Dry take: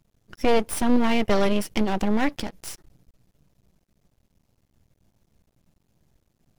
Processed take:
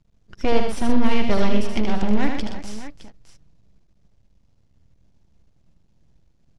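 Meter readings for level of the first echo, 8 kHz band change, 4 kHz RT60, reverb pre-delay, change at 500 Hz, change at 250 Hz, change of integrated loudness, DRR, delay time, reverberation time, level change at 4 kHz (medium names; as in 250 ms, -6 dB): -5.5 dB, -5.5 dB, no reverb, no reverb, -0.5 dB, +1.0 dB, 0.0 dB, no reverb, 77 ms, no reverb, 0.0 dB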